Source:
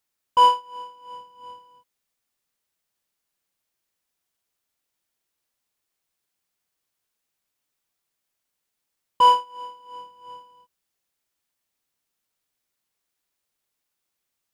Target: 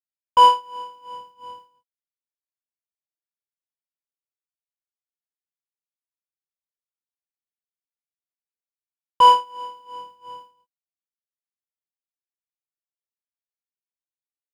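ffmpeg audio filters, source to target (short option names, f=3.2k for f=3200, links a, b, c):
-af "agate=range=-33dB:threshold=-44dB:ratio=3:detection=peak,volume=3dB"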